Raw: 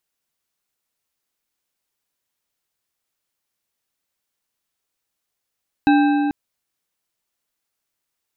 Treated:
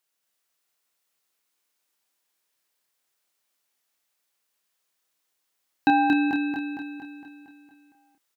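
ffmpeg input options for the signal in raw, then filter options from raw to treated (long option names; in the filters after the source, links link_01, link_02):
-f lavfi -i "aevalsrc='0.282*pow(10,-3*t/3.4)*sin(2*PI*291*t)+0.15*pow(10,-3*t/2.508)*sin(2*PI*802.3*t)+0.0794*pow(10,-3*t/2.05)*sin(2*PI*1572.6*t)+0.0422*pow(10,-3*t/1.763)*sin(2*PI*2599.5*t)+0.0224*pow(10,-3*t/1.563)*sin(2*PI*3881.9*t)':duration=0.44:sample_rate=44100"
-filter_complex "[0:a]highpass=frequency=360:poles=1,asplit=2[link_01][link_02];[link_02]adelay=29,volume=-6dB[link_03];[link_01][link_03]amix=inputs=2:normalize=0,asplit=2[link_04][link_05];[link_05]aecho=0:1:230|460|690|920|1150|1380|1610|1840:0.708|0.396|0.222|0.124|0.0696|0.039|0.0218|0.0122[link_06];[link_04][link_06]amix=inputs=2:normalize=0"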